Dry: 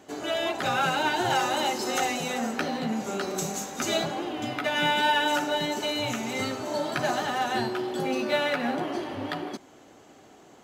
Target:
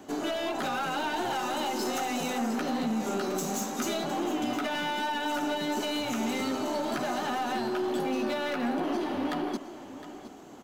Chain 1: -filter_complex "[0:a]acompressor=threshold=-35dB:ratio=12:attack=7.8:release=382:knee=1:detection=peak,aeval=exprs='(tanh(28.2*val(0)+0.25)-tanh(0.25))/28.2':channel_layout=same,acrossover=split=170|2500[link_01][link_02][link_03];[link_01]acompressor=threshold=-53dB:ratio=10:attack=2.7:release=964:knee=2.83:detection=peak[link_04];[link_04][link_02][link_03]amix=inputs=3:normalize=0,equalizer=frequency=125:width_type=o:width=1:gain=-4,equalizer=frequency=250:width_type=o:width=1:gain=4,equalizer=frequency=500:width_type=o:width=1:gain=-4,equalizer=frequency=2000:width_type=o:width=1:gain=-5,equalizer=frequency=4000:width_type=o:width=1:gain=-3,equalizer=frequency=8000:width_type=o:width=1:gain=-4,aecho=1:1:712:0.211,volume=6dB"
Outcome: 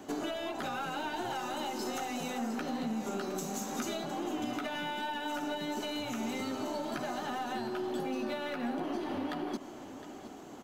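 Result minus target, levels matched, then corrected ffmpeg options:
downward compressor: peak gain reduction +8 dB
-filter_complex "[0:a]acompressor=threshold=-26.5dB:ratio=12:attack=7.8:release=382:knee=1:detection=peak,aeval=exprs='(tanh(28.2*val(0)+0.25)-tanh(0.25))/28.2':channel_layout=same,acrossover=split=170|2500[link_01][link_02][link_03];[link_01]acompressor=threshold=-53dB:ratio=10:attack=2.7:release=964:knee=2.83:detection=peak[link_04];[link_04][link_02][link_03]amix=inputs=3:normalize=0,equalizer=frequency=125:width_type=o:width=1:gain=-4,equalizer=frequency=250:width_type=o:width=1:gain=4,equalizer=frequency=500:width_type=o:width=1:gain=-4,equalizer=frequency=2000:width_type=o:width=1:gain=-5,equalizer=frequency=4000:width_type=o:width=1:gain=-3,equalizer=frequency=8000:width_type=o:width=1:gain=-4,aecho=1:1:712:0.211,volume=6dB"

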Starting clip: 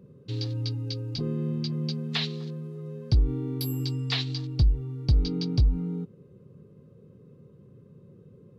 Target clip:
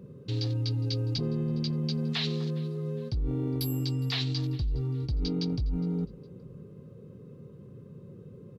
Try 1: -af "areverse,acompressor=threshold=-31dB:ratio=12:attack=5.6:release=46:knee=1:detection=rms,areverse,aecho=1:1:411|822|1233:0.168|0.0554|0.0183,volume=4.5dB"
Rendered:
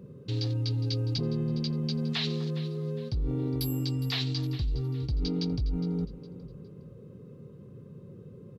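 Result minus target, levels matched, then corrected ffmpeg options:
echo-to-direct +7.5 dB
-af "areverse,acompressor=threshold=-31dB:ratio=12:attack=5.6:release=46:knee=1:detection=rms,areverse,aecho=1:1:411|822:0.0708|0.0234,volume=4.5dB"

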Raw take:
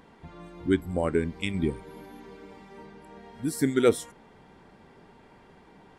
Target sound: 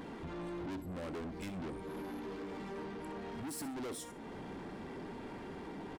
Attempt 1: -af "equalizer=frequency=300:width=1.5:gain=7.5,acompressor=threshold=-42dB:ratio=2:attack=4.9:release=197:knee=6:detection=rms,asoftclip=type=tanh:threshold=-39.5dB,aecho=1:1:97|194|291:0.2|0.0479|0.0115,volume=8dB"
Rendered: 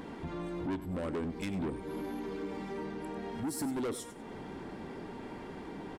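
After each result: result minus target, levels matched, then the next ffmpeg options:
echo 34 ms late; soft clipping: distortion −4 dB
-af "equalizer=frequency=300:width=1.5:gain=7.5,acompressor=threshold=-42dB:ratio=2:attack=4.9:release=197:knee=6:detection=rms,asoftclip=type=tanh:threshold=-39.5dB,aecho=1:1:63|126|189:0.2|0.0479|0.0115,volume=8dB"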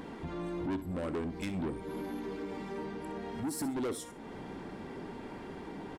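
soft clipping: distortion −4 dB
-af "equalizer=frequency=300:width=1.5:gain=7.5,acompressor=threshold=-42dB:ratio=2:attack=4.9:release=197:knee=6:detection=rms,asoftclip=type=tanh:threshold=-48dB,aecho=1:1:63|126|189:0.2|0.0479|0.0115,volume=8dB"

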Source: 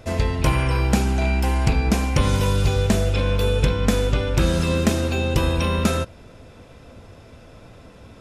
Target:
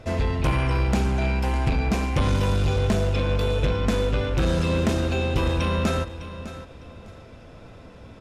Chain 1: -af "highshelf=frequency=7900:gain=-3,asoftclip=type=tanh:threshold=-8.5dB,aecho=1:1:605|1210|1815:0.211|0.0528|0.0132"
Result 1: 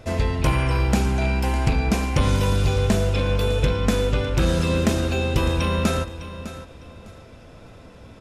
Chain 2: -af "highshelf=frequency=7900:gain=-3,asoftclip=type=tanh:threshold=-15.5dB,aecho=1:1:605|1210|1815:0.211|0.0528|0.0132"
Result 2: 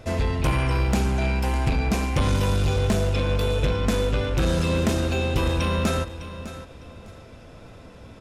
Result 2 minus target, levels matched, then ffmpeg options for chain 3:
8,000 Hz band +4.0 dB
-af "highshelf=frequency=7900:gain=-12,asoftclip=type=tanh:threshold=-15.5dB,aecho=1:1:605|1210|1815:0.211|0.0528|0.0132"

